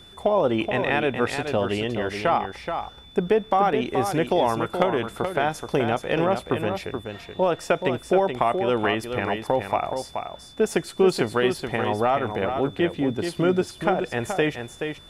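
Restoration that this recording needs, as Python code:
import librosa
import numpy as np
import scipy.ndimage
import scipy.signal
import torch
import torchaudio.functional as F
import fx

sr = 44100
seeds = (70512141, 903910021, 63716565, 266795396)

y = fx.notch(x, sr, hz=3500.0, q=30.0)
y = fx.fix_echo_inverse(y, sr, delay_ms=427, level_db=-7.0)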